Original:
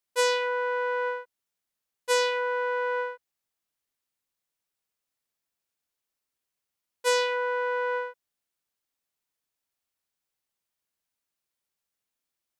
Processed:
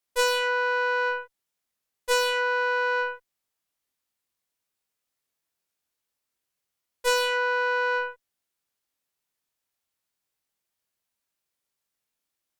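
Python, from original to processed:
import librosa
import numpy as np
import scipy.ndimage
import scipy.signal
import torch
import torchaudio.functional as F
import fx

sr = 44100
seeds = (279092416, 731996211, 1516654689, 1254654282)

y = fx.cheby_harmonics(x, sr, harmonics=(8,), levels_db=(-19,), full_scale_db=-12.0)
y = fx.doubler(y, sr, ms=23.0, db=-5)
y = F.gain(torch.from_numpy(y), 1.0).numpy()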